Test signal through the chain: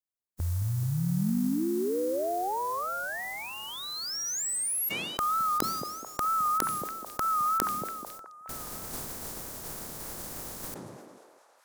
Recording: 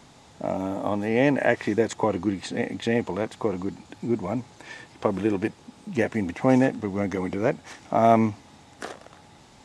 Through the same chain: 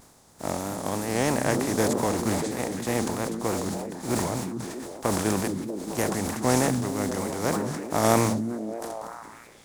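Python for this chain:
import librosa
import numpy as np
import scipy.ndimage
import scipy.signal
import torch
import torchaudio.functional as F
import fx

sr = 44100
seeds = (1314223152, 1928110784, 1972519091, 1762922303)

y = fx.spec_flatten(x, sr, power=0.43)
y = fx.peak_eq(y, sr, hz=2800.0, db=-12.5, octaves=1.6)
y = fx.echo_stepped(y, sr, ms=214, hz=170.0, octaves=0.7, feedback_pct=70, wet_db=-4.0)
y = fx.vibrato(y, sr, rate_hz=3.2, depth_cents=68.0)
y = fx.sustainer(y, sr, db_per_s=31.0)
y = y * librosa.db_to_amplitude(-2.0)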